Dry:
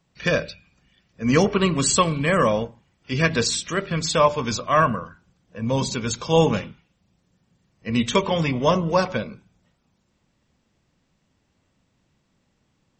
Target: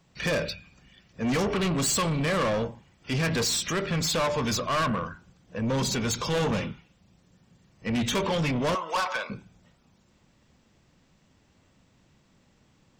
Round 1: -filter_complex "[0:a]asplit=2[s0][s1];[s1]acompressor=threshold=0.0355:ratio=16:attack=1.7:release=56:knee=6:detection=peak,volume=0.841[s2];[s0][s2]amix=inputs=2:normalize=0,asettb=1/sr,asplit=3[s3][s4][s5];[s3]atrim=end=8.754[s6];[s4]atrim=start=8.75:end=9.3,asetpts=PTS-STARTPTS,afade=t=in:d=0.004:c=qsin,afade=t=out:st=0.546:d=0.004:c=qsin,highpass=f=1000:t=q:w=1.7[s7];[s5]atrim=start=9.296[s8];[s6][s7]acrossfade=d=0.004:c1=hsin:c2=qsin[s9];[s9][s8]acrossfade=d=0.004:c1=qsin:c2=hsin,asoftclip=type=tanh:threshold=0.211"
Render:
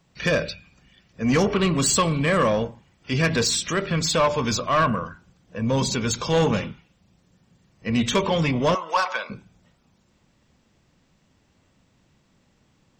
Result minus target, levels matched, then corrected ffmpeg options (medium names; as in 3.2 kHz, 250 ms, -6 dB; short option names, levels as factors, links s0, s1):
saturation: distortion -8 dB
-filter_complex "[0:a]asplit=2[s0][s1];[s1]acompressor=threshold=0.0355:ratio=16:attack=1.7:release=56:knee=6:detection=peak,volume=0.841[s2];[s0][s2]amix=inputs=2:normalize=0,asettb=1/sr,asplit=3[s3][s4][s5];[s3]atrim=end=8.754[s6];[s4]atrim=start=8.75:end=9.3,asetpts=PTS-STARTPTS,afade=t=in:d=0.004:c=qsin,afade=t=out:st=0.546:d=0.004:c=qsin,highpass=f=1000:t=q:w=1.7[s7];[s5]atrim=start=9.296[s8];[s6][s7]acrossfade=d=0.004:c1=hsin:c2=qsin[s9];[s9][s8]acrossfade=d=0.004:c1=qsin:c2=hsin,asoftclip=type=tanh:threshold=0.0708"